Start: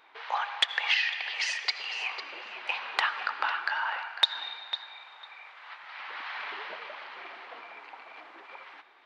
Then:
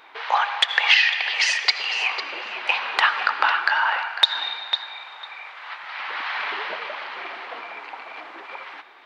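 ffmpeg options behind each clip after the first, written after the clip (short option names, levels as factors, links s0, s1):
-af "alimiter=level_in=3.55:limit=0.891:release=50:level=0:latency=1,volume=0.891"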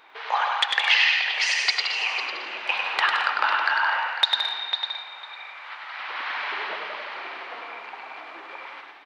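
-af "aecho=1:1:100|170|219|253.3|277.3:0.631|0.398|0.251|0.158|0.1,volume=0.631"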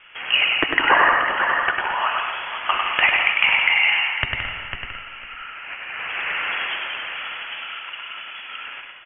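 -af "lowpass=f=3100:t=q:w=0.5098,lowpass=f=3100:t=q:w=0.6013,lowpass=f=3100:t=q:w=0.9,lowpass=f=3100:t=q:w=2.563,afreqshift=-3700,volume=1.78"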